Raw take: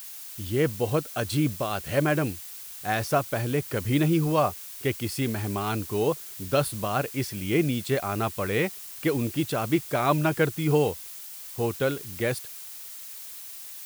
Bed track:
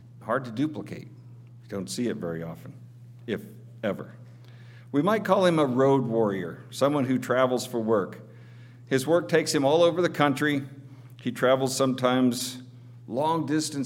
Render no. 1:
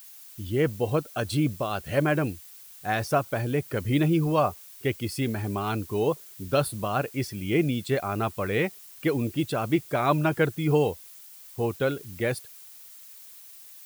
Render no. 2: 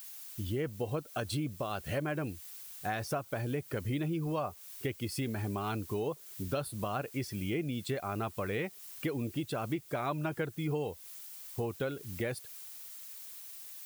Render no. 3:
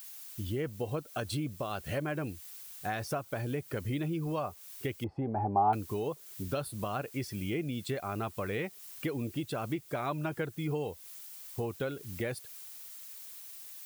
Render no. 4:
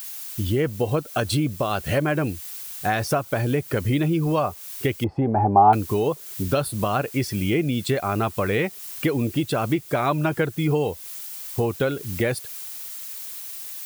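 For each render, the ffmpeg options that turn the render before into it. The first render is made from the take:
-af "afftdn=nr=8:nf=-41"
-af "acompressor=threshold=0.0224:ratio=4"
-filter_complex "[0:a]asettb=1/sr,asplit=3[s0][s1][s2];[s0]atrim=end=5.044[s3];[s1]atrim=start=5.04:end=5.73,asetpts=PTS-STARTPTS,afade=t=in:d=0.004:c=qsin,afade=t=out:st=0.686:d=0.004:c=qsin,lowpass=f=810:t=q:w=10[s4];[s2]atrim=start=5.726[s5];[s3][s4]acrossfade=d=0.004:c1=hsin:c2=qsin[s6];[s6][s5]acrossfade=d=0.004:c1=qsin:c2=hsin"
-af "volume=3.98"

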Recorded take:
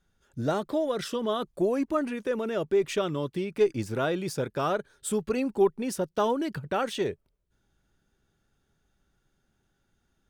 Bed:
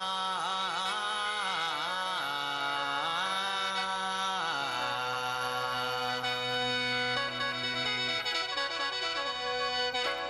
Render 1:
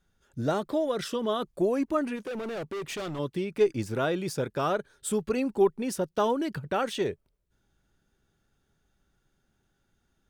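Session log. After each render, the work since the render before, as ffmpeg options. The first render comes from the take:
-filter_complex "[0:a]asplit=3[s0][s1][s2];[s0]afade=t=out:st=2.15:d=0.02[s3];[s1]asoftclip=type=hard:threshold=0.0251,afade=t=in:st=2.15:d=0.02,afade=t=out:st=3.18:d=0.02[s4];[s2]afade=t=in:st=3.18:d=0.02[s5];[s3][s4][s5]amix=inputs=3:normalize=0"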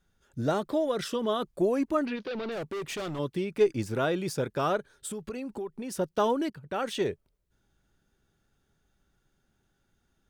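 -filter_complex "[0:a]asettb=1/sr,asplit=3[s0][s1][s2];[s0]atrim=end=2.064[s3];[s1]atrim=start=2.06:end=2.52,asetpts=PTS-STARTPTS,afade=t=in:d=0.004:c=qsin,afade=t=out:st=0.456:d=0.004:c=qsin,highshelf=f=6000:t=q:w=3:g=-12[s4];[s2]atrim=start=2.516[s5];[s3][s4]acrossfade=d=0.004:c1=hsin:c2=qsin[s6];[s6][s5]acrossfade=d=0.004:c1=qsin:c2=hsin,asettb=1/sr,asplit=3[s7][s8][s9];[s7]atrim=end=4.774[s10];[s8]atrim=start=4.77:end=5.96,asetpts=PTS-STARTPTS,afade=t=in:d=0.004:c=qsin,afade=t=out:st=1.186:d=0.004:c=qsin,acompressor=threshold=0.0224:ratio=6:attack=3.2:release=140:knee=1:detection=peak[s11];[s9]atrim=start=5.956[s12];[s10][s11]acrossfade=d=0.004:c1=hsin:c2=qsin[s13];[s13][s12]acrossfade=d=0.004:c1=qsin:c2=hsin,asplit=2[s14][s15];[s14]atrim=end=6.5,asetpts=PTS-STARTPTS,afade=t=out:st=6.496:d=0.004:c=hsin:silence=0.133352[s16];[s15]atrim=start=6.5,asetpts=PTS-STARTPTS,afade=t=in:d=0.46:silence=0.133352[s17];[s16][s17]concat=n=2:v=0:a=1"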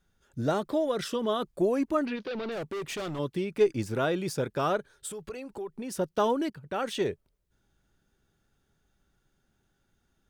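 -filter_complex "[0:a]asettb=1/sr,asplit=3[s0][s1][s2];[s0]atrim=end=4.914[s3];[s1]atrim=start=4.91:end=5.68,asetpts=PTS-STARTPTS,afade=t=in:d=0.004:c=qsin,afade=t=out:st=0.766:d=0.004:c=qsin,equalizer=f=230:w=3.3:g=-11.5[s4];[s2]atrim=start=5.676[s5];[s3][s4]acrossfade=d=0.004:c1=hsin:c2=qsin[s6];[s6][s5]acrossfade=d=0.004:c1=qsin:c2=hsin"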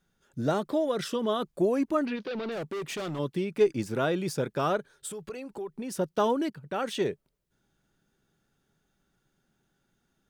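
-af "lowshelf=f=110:t=q:w=1.5:g=-6.5"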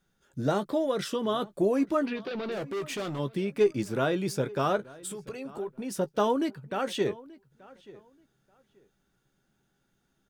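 -filter_complex "[0:a]asplit=2[s0][s1];[s1]adelay=15,volume=0.282[s2];[s0][s2]amix=inputs=2:normalize=0,asplit=2[s3][s4];[s4]adelay=881,lowpass=f=3200:p=1,volume=0.0891,asplit=2[s5][s6];[s6]adelay=881,lowpass=f=3200:p=1,volume=0.21[s7];[s3][s5][s7]amix=inputs=3:normalize=0"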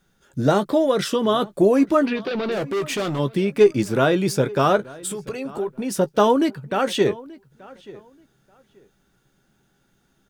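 -af "volume=2.82"

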